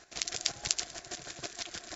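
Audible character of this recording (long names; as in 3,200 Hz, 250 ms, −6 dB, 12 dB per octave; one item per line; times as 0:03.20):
chopped level 6.3 Hz, depth 65%, duty 25%
MP3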